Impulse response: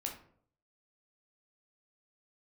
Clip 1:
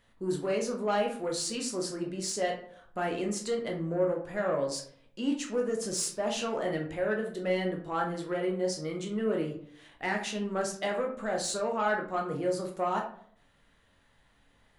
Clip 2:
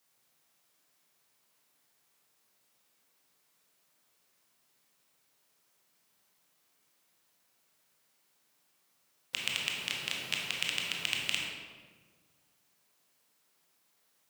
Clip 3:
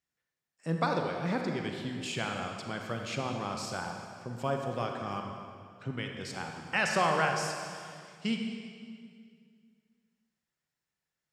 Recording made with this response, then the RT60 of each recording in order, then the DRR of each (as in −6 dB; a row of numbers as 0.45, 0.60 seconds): 1; 0.60, 1.6, 2.3 seconds; 0.5, −2.0, 2.5 decibels